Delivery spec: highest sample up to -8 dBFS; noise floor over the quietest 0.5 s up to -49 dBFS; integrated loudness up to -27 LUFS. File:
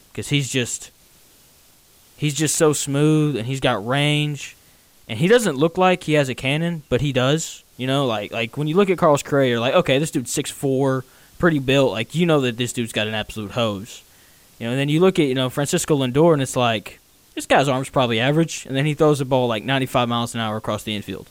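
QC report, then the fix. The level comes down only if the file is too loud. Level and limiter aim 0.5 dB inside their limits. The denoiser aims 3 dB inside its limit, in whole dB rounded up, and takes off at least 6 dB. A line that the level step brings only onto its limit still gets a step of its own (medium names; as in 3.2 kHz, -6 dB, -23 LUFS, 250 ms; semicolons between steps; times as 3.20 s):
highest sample -5.0 dBFS: fail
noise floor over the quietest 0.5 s -53 dBFS: pass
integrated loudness -20.0 LUFS: fail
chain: trim -7.5 dB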